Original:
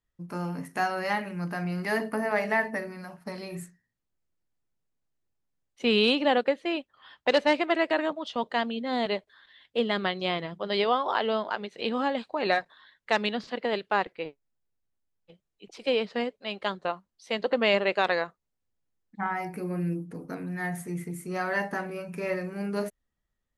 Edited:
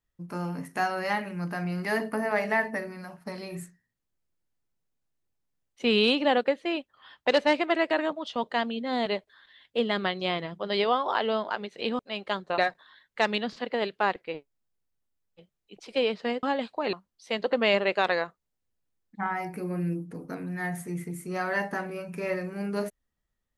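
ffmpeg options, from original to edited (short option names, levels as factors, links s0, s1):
-filter_complex "[0:a]asplit=5[s0][s1][s2][s3][s4];[s0]atrim=end=11.992[s5];[s1]atrim=start=16.338:end=16.932[s6];[s2]atrim=start=12.488:end=16.342[s7];[s3]atrim=start=11.988:end=12.492[s8];[s4]atrim=start=16.928[s9];[s5][s6]acrossfade=d=0.004:c1=hsin:c2=hsin[s10];[s10][s7]acrossfade=d=0.004:c1=hsin:c2=hsin[s11];[s11][s8]acrossfade=d=0.004:c1=hsin:c2=hsin[s12];[s12][s9]acrossfade=d=0.004:c1=hsin:c2=hsin"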